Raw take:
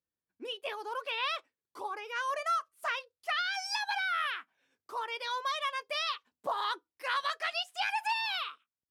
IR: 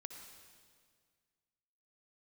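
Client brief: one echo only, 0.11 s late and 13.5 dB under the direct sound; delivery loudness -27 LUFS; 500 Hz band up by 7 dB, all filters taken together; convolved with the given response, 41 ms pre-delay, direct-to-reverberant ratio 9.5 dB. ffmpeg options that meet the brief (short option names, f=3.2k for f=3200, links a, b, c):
-filter_complex "[0:a]equalizer=f=500:t=o:g=8.5,aecho=1:1:110:0.211,asplit=2[a][b];[1:a]atrim=start_sample=2205,adelay=41[c];[b][c]afir=irnorm=-1:irlink=0,volume=-5dB[d];[a][d]amix=inputs=2:normalize=0,volume=5dB"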